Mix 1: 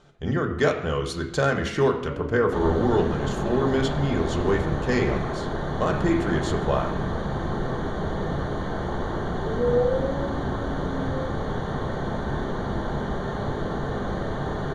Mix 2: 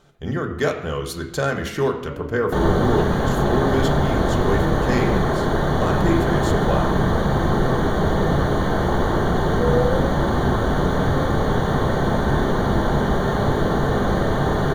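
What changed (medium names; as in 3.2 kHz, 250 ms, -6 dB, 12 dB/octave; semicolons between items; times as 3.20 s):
second sound +8.5 dB; master: remove Bessel low-pass 6.8 kHz, order 6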